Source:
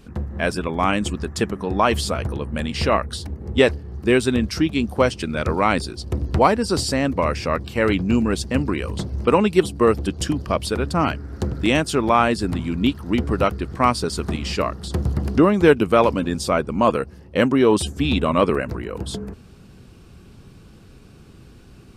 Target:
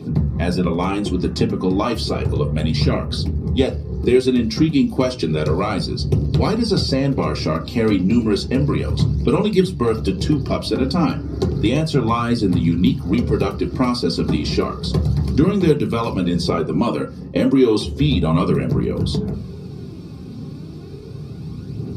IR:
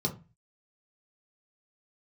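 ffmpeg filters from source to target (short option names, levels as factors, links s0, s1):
-filter_complex "[0:a]aphaser=in_gain=1:out_gain=1:delay=4.1:decay=0.43:speed=0.32:type=triangular,acrossover=split=1700|4600[s0][s1][s2];[s0]acompressor=threshold=0.0355:ratio=4[s3];[s1]acompressor=threshold=0.02:ratio=4[s4];[s2]acompressor=threshold=0.01:ratio=4[s5];[s3][s4][s5]amix=inputs=3:normalize=0[s6];[1:a]atrim=start_sample=2205[s7];[s6][s7]afir=irnorm=-1:irlink=0"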